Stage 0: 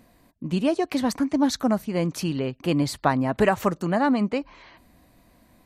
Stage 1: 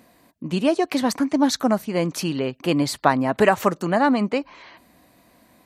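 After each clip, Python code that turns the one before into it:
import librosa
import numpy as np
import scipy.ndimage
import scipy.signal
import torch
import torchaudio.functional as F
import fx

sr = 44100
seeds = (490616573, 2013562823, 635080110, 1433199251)

y = fx.highpass(x, sr, hz=240.0, slope=6)
y = y * librosa.db_to_amplitude(4.5)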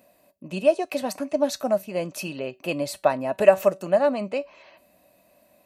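y = fx.high_shelf(x, sr, hz=8800.0, db=11.5)
y = fx.comb_fb(y, sr, f0_hz=190.0, decay_s=0.21, harmonics='all', damping=0.0, mix_pct=50)
y = fx.small_body(y, sr, hz=(600.0, 2600.0), ring_ms=40, db=17)
y = y * librosa.db_to_amplitude(-5.5)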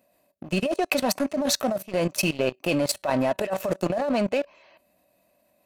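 y = fx.level_steps(x, sr, step_db=11)
y = fx.leveller(y, sr, passes=2)
y = fx.over_compress(y, sr, threshold_db=-22.0, ratio=-1.0)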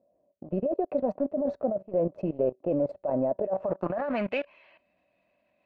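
y = fx.filter_sweep_lowpass(x, sr, from_hz=550.0, to_hz=2600.0, start_s=3.43, end_s=4.32, q=2.0)
y = y * librosa.db_to_amplitude(-6.0)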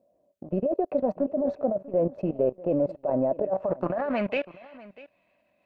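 y = x + 10.0 ** (-19.5 / 20.0) * np.pad(x, (int(643 * sr / 1000.0), 0))[:len(x)]
y = y * librosa.db_to_amplitude(2.0)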